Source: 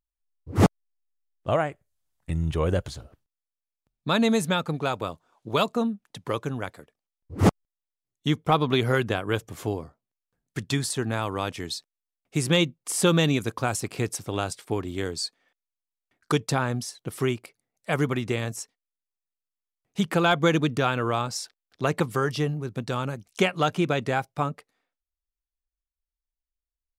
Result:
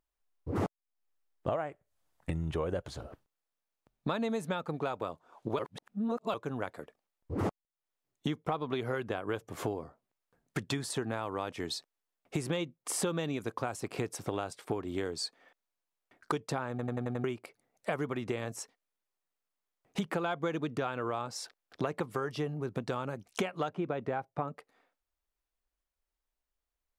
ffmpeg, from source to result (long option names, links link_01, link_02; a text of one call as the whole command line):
ffmpeg -i in.wav -filter_complex "[0:a]asettb=1/sr,asplit=3[link_01][link_02][link_03];[link_01]atrim=end=23.694[link_04];[link_02]atrim=start=23.69:end=24.48,asetpts=PTS-STARTPTS,afade=type=in:duration=0.004:curve=qsin,afade=type=out:start_time=0.786:duration=0.004:curve=qsin,lowpass=frequency=1500:poles=1[link_05];[link_03]atrim=start=24.476[link_06];[link_04][link_05]acrossfade=duration=0.004:curve1=hsin:curve2=qsin[link_07];[link_07][link_06]acrossfade=duration=0.004:curve1=qsin:curve2=hsin,asplit=9[link_08][link_09][link_10][link_11][link_12][link_13][link_14][link_15][link_16];[link_08]atrim=end=5.592[link_17];[link_09]atrim=start=5.588:end=6.342,asetpts=PTS-STARTPTS,areverse[link_18];[link_10]atrim=start=6.338:end=16.792[link_19];[link_11]atrim=start=16.698:end=16.792[link_20];[link_12]atrim=start=16.698:end=16.792[link_21];[link_13]atrim=start=16.698:end=16.792[link_22];[link_14]atrim=start=16.698:end=16.792[link_23];[link_15]atrim=start=16.698:end=16.792[link_24];[link_16]atrim=start=17.238[link_25];[link_17][link_18]acrossfade=duration=0.004:curve1=hsin:curve2=hsin[link_26];[link_26][link_19]acrossfade=duration=0.004:curve1=hsin:curve2=hsin[link_27];[link_27][link_20]acrossfade=duration=0.004:curve1=hsin:curve2=hsin[link_28];[link_28][link_21]acrossfade=duration=0.004:curve1=hsin:curve2=hsin[link_29];[link_29][link_22]acrossfade=duration=0.004:curve1=hsin:curve2=hsin[link_30];[link_30][link_23]acrossfade=duration=0.004:curve1=hsin:curve2=hsin[link_31];[link_31][link_24]acrossfade=duration=0.004:curve1=hsin:curve2=hsin[link_32];[link_32][link_25]acrossfade=duration=0.004:curve1=hsin:curve2=hsin,equalizer=frequency=660:width=0.31:gain=10,acompressor=threshold=-32dB:ratio=6" out.wav